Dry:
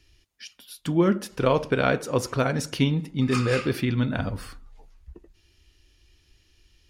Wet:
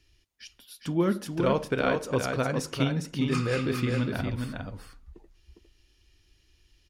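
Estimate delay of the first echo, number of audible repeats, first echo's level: 0.406 s, 1, -5.0 dB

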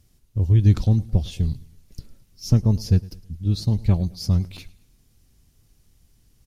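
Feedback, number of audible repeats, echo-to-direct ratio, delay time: 42%, 2, -20.5 dB, 0.108 s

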